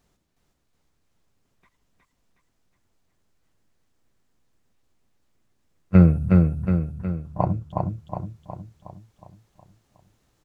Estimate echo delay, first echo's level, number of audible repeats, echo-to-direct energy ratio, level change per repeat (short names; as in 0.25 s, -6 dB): 0.365 s, -3.0 dB, 6, -1.5 dB, -5.5 dB